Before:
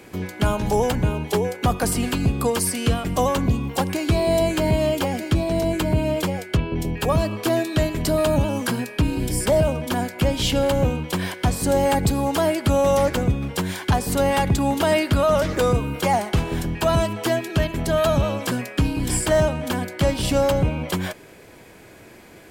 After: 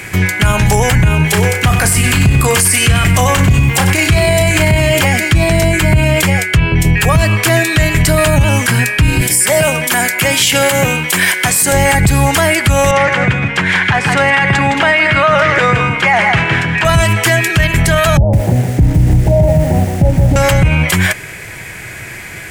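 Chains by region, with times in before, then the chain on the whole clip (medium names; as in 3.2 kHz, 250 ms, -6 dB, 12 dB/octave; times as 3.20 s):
1.16–5.01 s: doubling 32 ms -9.5 dB + bit-crushed delay 95 ms, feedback 35%, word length 8-bit, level -12 dB
9.21–11.72 s: high-pass 240 Hz + treble shelf 7.7 kHz +8.5 dB
12.91–16.85 s: band-pass 120–2300 Hz + tilt EQ +2 dB/octave + delay 163 ms -7.5 dB
18.17–20.36 s: steep low-pass 850 Hz 72 dB/octave + bit-crushed delay 161 ms, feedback 35%, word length 7-bit, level -6.5 dB
whole clip: ten-band graphic EQ 125 Hz +6 dB, 250 Hz -10 dB, 500 Hz -7 dB, 1 kHz -4 dB, 2 kHz +10 dB, 4 kHz -4 dB, 8 kHz +5 dB; loudness maximiser +18 dB; trim -1 dB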